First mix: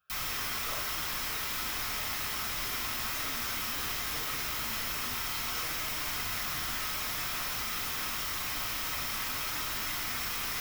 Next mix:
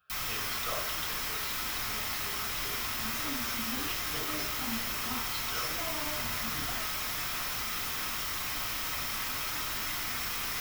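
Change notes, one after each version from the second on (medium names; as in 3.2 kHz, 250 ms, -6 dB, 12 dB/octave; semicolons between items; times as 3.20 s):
speech +6.5 dB; second sound: send on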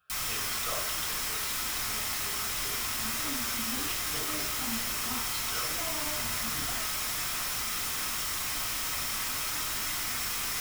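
first sound: add peaking EQ 8.6 kHz +8 dB 0.99 oct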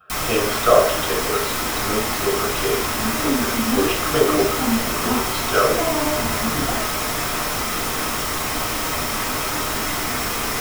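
speech: send +8.5 dB; master: remove amplifier tone stack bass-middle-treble 5-5-5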